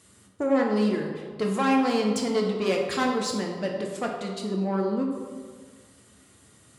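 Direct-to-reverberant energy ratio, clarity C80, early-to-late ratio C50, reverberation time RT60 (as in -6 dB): 0.0 dB, 5.0 dB, 3.5 dB, 1.7 s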